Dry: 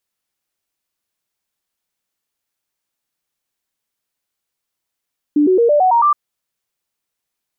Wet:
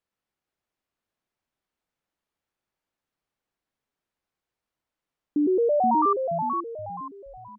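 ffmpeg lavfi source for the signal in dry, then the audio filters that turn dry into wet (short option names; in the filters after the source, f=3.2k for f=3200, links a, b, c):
-f lavfi -i "aevalsrc='0.355*clip(min(mod(t,0.11),0.11-mod(t,0.11))/0.005,0,1)*sin(2*PI*295*pow(2,floor(t/0.11)/3)*mod(t,0.11))':d=0.77:s=44100"
-filter_complex "[0:a]lowpass=f=1.3k:p=1,alimiter=limit=-18dB:level=0:latency=1:release=125,asplit=5[a][b][c][d][e];[b]adelay=475,afreqshift=-64,volume=-5.5dB[f];[c]adelay=950,afreqshift=-128,volume=-14.1dB[g];[d]adelay=1425,afreqshift=-192,volume=-22.8dB[h];[e]adelay=1900,afreqshift=-256,volume=-31.4dB[i];[a][f][g][h][i]amix=inputs=5:normalize=0"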